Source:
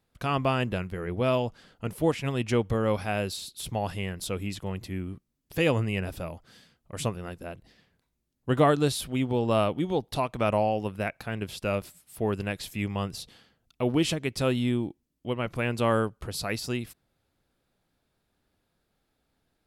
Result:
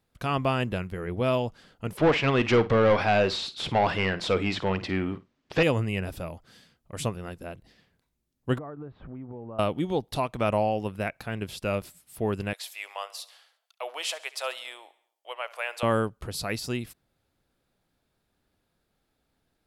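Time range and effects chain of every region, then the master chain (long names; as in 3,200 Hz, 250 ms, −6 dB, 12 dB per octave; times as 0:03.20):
0:01.97–0:05.63: mid-hump overdrive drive 23 dB, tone 3,200 Hz, clips at −11.5 dBFS + high-frequency loss of the air 130 metres + flutter between parallel walls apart 8.9 metres, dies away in 0.21 s
0:08.58–0:09.59: low-pass filter 1,500 Hz 24 dB per octave + downward compressor 8 to 1, threshold −36 dBFS
0:12.53–0:15.83: Butterworth high-pass 590 Hz + repeating echo 69 ms, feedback 55%, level −19 dB
whole clip: no processing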